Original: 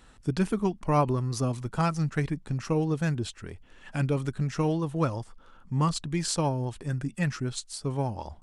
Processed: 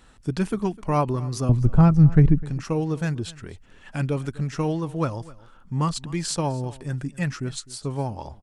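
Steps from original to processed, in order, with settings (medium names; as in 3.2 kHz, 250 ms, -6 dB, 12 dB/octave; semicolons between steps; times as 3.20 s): 1.49–2.43 s: tilt EQ -4.5 dB/octave; delay 254 ms -20.5 dB; trim +1.5 dB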